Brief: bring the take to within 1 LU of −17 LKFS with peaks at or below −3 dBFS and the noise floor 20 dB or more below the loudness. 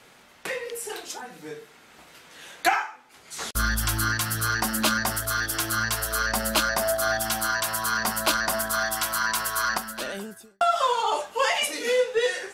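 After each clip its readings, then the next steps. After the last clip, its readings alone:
integrated loudness −25.0 LKFS; sample peak −8.0 dBFS; target loudness −17.0 LKFS
→ level +8 dB
brickwall limiter −3 dBFS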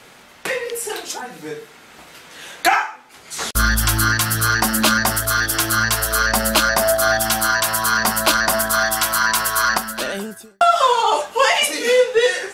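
integrated loudness −17.0 LKFS; sample peak −3.0 dBFS; background noise floor −45 dBFS

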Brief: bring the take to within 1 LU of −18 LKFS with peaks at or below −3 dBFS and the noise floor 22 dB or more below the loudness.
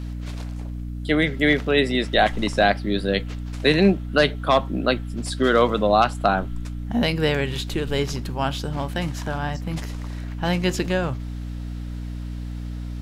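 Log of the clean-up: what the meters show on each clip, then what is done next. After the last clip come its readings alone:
mains hum 60 Hz; hum harmonics up to 300 Hz; level of the hum −28 dBFS; integrated loudness −22.5 LKFS; sample peak −4.5 dBFS; target loudness −18.0 LKFS
→ mains-hum notches 60/120/180/240/300 Hz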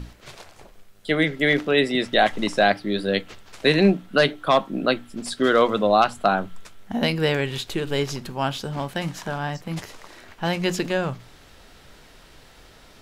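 mains hum none found; integrated loudness −22.5 LKFS; sample peak −5.0 dBFS; target loudness −18.0 LKFS
→ level +4.5 dB
brickwall limiter −3 dBFS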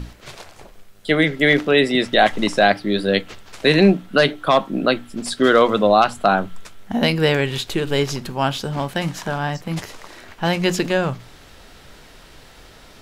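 integrated loudness −18.5 LKFS; sample peak −3.0 dBFS; background noise floor −46 dBFS

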